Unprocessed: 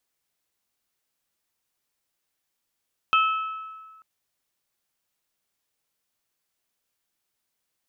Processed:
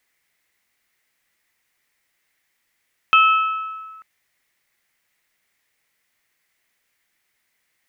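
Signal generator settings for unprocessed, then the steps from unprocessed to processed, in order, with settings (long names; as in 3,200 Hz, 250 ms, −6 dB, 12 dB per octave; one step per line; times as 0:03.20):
struck glass bell, lowest mode 1,300 Hz, modes 3, decay 1.59 s, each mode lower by 5 dB, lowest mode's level −16 dB
parametric band 2,000 Hz +14 dB 0.6 octaves
in parallel at +0.5 dB: brickwall limiter −16 dBFS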